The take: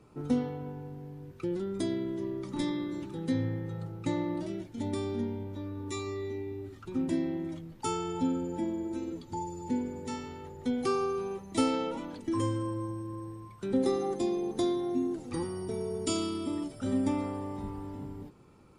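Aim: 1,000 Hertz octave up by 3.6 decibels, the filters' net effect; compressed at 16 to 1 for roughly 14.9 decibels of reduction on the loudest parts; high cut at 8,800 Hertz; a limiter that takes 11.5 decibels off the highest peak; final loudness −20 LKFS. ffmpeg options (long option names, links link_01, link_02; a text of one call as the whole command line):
ffmpeg -i in.wav -af "lowpass=8800,equalizer=frequency=1000:width_type=o:gain=4.5,acompressor=threshold=-37dB:ratio=16,volume=25dB,alimiter=limit=-12dB:level=0:latency=1" out.wav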